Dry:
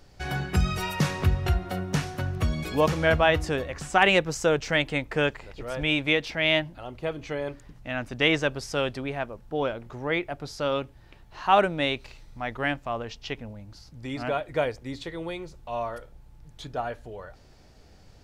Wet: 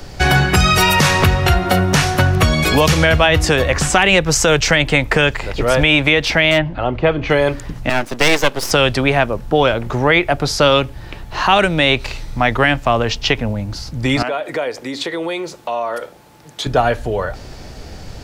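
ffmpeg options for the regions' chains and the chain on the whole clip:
-filter_complex "[0:a]asettb=1/sr,asplit=3[a][b][c];[a]atrim=end=6.514[d];[b]atrim=start=6.51:end=7.3,asetpts=PTS-STARTPTS,afade=t=in:d=0.004:c=qsin,afade=t=out:st=0.786:d=0.004:c=qsin,lowpass=2.7k,asoftclip=type=hard:threshold=-17.5dB[e];[c]atrim=start=7.296[f];[d][e]acrossfade=d=0.004:c1=hsin:c2=qsin[g];[g][f]acrossfade=d=0.004:c1=qsin:c2=hsin,asettb=1/sr,asplit=3[h][i][j];[h]atrim=end=7.894[k];[i]atrim=start=7.89:end=8.71,asetpts=PTS-STARTPTS,afade=t=in:d=0.004:c=qsin,afade=t=out:st=0.816:d=0.004:c=qsin,highpass=290,equalizer=f=1.9k:w=1.1:g=-3,aeval=exprs='max(val(0),0)':c=same[l];[j]atrim=start=8.706[m];[k][l]acrossfade=d=0.004:c1=hsin:c2=qsin[n];[n][m]acrossfade=d=0.004:c1=qsin:c2=hsin,asettb=1/sr,asplit=3[o][p][q];[o]atrim=end=14.224[r];[p]atrim=start=14.22:end=16.66,asetpts=PTS-STARTPTS,afade=t=in:d=0.004:c=qsin,afade=t=out:st=2.436:d=0.004:c=qsin,acompressor=threshold=-38dB:ratio=5:attack=3.2:release=140:knee=1:detection=peak,highpass=300[s];[q]atrim=start=16.656[t];[r][s]acrossfade=d=0.004:c1=hsin:c2=qsin[u];[u][t]acrossfade=d=0.004:c1=qsin:c2=hsin,acrossover=split=120|520|2000[v][w][x][y];[v]acompressor=threshold=-36dB:ratio=4[z];[w]acompressor=threshold=-39dB:ratio=4[aa];[x]acompressor=threshold=-35dB:ratio=4[ab];[y]acompressor=threshold=-32dB:ratio=4[ac];[z][aa][ab][ac]amix=inputs=4:normalize=0,alimiter=level_in=21.5dB:limit=-1dB:release=50:level=0:latency=1,volume=-1dB"

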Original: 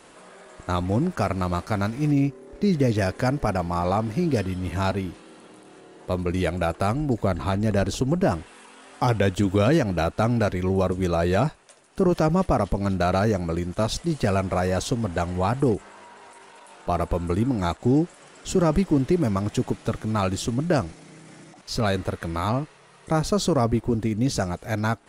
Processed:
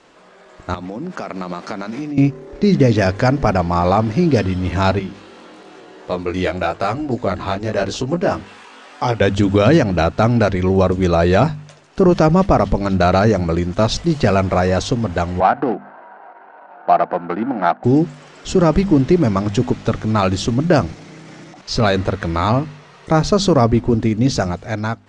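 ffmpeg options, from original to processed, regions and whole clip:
-filter_complex "[0:a]asettb=1/sr,asplit=3[a][b][c];[a]atrim=end=0.744[d];[b]atrim=start=0.74:end=2.18,asetpts=PTS-STARTPTS,afade=t=in:d=0.004:c=qsin,afade=t=out:st=1.436:d=0.004:c=qsin,highpass=f=170:w=0.5412,highpass=f=170:w=1.3066,acompressor=threshold=-30dB:ratio=10:attack=3.2:release=140:knee=1:detection=peak[e];[c]atrim=start=2.176[f];[d][e]acrossfade=d=0.004:c1=hsin:c2=qsin[g];[g][f]acrossfade=d=0.004:c1=qsin:c2=hsin,asettb=1/sr,asplit=3[h][i][j];[h]atrim=end=4.994[k];[i]atrim=start=4.99:end=9.21,asetpts=PTS-STARTPTS,afade=t=in:d=0.004:c=qsin,afade=t=out:st=4.216:d=0.004:c=qsin,lowshelf=f=210:g=-9.5,acompressor=mode=upward:threshold=-40dB:ratio=2.5:attack=3.2:release=140:knee=2.83:detection=peak,flanger=delay=16:depth=6.2:speed=1[l];[j]atrim=start=9.206[m];[k][l]acrossfade=d=0.004:c1=hsin:c2=qsin[n];[n][m]acrossfade=d=0.004:c1=qsin:c2=hsin,asettb=1/sr,asplit=3[o][p][q];[o]atrim=end=15.404[r];[p]atrim=start=15.4:end=17.84,asetpts=PTS-STARTPTS,afade=t=in:d=0.004:c=qsin,afade=t=out:st=2.436:d=0.004:c=qsin,adynamicsmooth=sensitivity=3:basefreq=950,highpass=f=210:w=0.5412,highpass=f=210:w=1.3066,equalizer=f=260:t=q:w=4:g=-3,equalizer=f=410:t=q:w=4:g=-7,equalizer=f=740:t=q:w=4:g=10,equalizer=f=1.5k:t=q:w=4:g=9,equalizer=f=3.5k:t=q:w=4:g=-6,lowpass=f=4.4k:w=0.5412,lowpass=f=4.4k:w=1.3066[s];[q]atrim=start=17.836[t];[r][s]acrossfade=d=0.004:c1=hsin:c2=qsin[u];[u][t]acrossfade=d=0.004:c1=qsin:c2=hsin,lowpass=f=6.5k:w=0.5412,lowpass=f=6.5k:w=1.3066,bandreject=f=49.8:t=h:w=4,bandreject=f=99.6:t=h:w=4,bandreject=f=149.4:t=h:w=4,bandreject=f=199.2:t=h:w=4,bandreject=f=249:t=h:w=4,dynaudnorm=f=340:g=5:m=10dB"

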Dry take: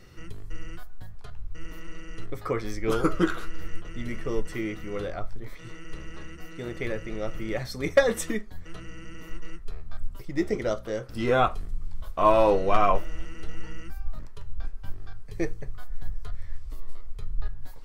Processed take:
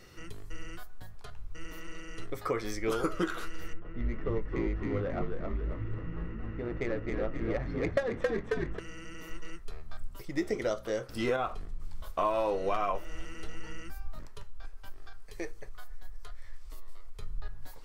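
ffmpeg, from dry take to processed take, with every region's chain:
-filter_complex "[0:a]asettb=1/sr,asplit=3[a][b][c];[a]atrim=end=3.734[d];[b]atrim=start=3.73:end=8.79,asetpts=PTS-STARTPTS,afade=t=in:d=0.004:c=qsin,afade=t=out:st=5.056:d=0.004:c=qsin,bass=f=250:g=2,treble=f=4k:g=-12,adynamicsmooth=sensitivity=2:basefreq=1.5k,asplit=8[e][f][g][h][i][j][k][l];[f]adelay=270,afreqshift=-57,volume=-3.5dB[m];[g]adelay=540,afreqshift=-114,volume=-9.5dB[n];[h]adelay=810,afreqshift=-171,volume=-15.5dB[o];[i]adelay=1080,afreqshift=-228,volume=-21.6dB[p];[j]adelay=1350,afreqshift=-285,volume=-27.6dB[q];[k]adelay=1620,afreqshift=-342,volume=-33.6dB[r];[l]adelay=1890,afreqshift=-399,volume=-39.6dB[s];[e][m][n][o][p][q][r][s]amix=inputs=8:normalize=0,atrim=end_sample=223146[t];[c]atrim=start=8.786[u];[d][t]acrossfade=d=0.004:c1=hsin:c2=qsin[v];[v][u]acrossfade=d=0.004:c1=qsin:c2=hsin,asettb=1/sr,asplit=3[w][x][y];[w]atrim=end=11.364[z];[x]atrim=start=11.36:end=11.8,asetpts=PTS-STARTPTS,afade=t=in:d=0.004:c=qsin,afade=t=out:st=0.436:d=0.004:c=qsin,aemphasis=mode=reproduction:type=50kf,acompressor=threshold=-25dB:ratio=2:attack=3.2:release=140:knee=1:detection=peak,aeval=exprs='sgn(val(0))*max(abs(val(0))-0.00119,0)':c=same[aa];[y]atrim=start=11.796[ab];[z][aa]acrossfade=d=0.004:c1=hsin:c2=qsin[ac];[ac][ab]acrossfade=d=0.004:c1=qsin:c2=hsin,asettb=1/sr,asplit=3[ad][ae][af];[ad]atrim=end=14.434[ag];[ae]atrim=start=14.43:end=17.19,asetpts=PTS-STARTPTS,afade=t=in:d=0.004:c=qsin,afade=t=out:st=2.756:d=0.004:c=qsin,acompressor=threshold=-28dB:ratio=2:attack=3.2:release=140:knee=1:detection=peak,equalizer=f=130:w=0.53:g=-11[ah];[af]atrim=start=17.186[ai];[ag][ah]acrossfade=d=0.004:c1=hsin:c2=qsin[aj];[aj][ai]acrossfade=d=0.004:c1=qsin:c2=hsin,bass=f=250:g=-6,treble=f=4k:g=2,acompressor=threshold=-26dB:ratio=6"

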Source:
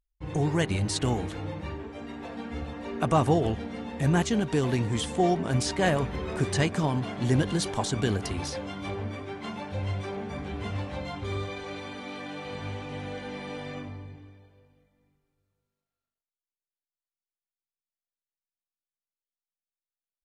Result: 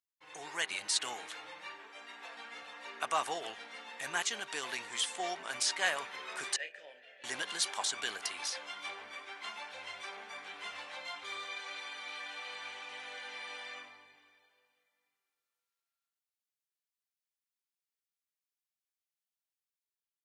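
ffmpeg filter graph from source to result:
-filter_complex "[0:a]asettb=1/sr,asplit=3[a][b][c];[a]atrim=end=6.564[d];[b]atrim=start=6.56:end=7.24,asetpts=PTS-STARTPTS,afade=t=in:d=0.004:c=qsin,afade=t=out:st=0.676:d=0.004:c=qsin,asplit=3[e][f][g];[e]bandpass=f=530:t=q:w=8,volume=0dB[h];[f]bandpass=f=1.84k:t=q:w=8,volume=-6dB[i];[g]bandpass=f=2.48k:t=q:w=8,volume=-9dB[j];[h][i][j]amix=inputs=3:normalize=0,asplit=2[k][l];[l]adelay=32,volume=-8.5dB[m];[k][m]amix=inputs=2:normalize=0,atrim=end_sample=29988[n];[c]atrim=start=7.236[o];[d][n]acrossfade=d=0.004:c1=hsin:c2=qsin[p];[p][o]acrossfade=d=0.004:c1=qsin:c2=hsin,dynaudnorm=f=110:g=9:m=4dB,highpass=1.3k,volume=-3.5dB"

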